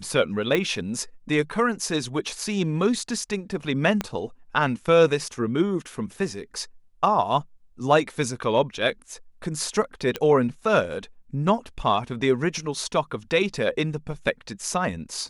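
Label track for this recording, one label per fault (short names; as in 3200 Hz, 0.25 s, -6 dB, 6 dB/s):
0.550000	0.550000	pop -10 dBFS
4.010000	4.010000	pop -11 dBFS
10.160000	10.160000	pop -12 dBFS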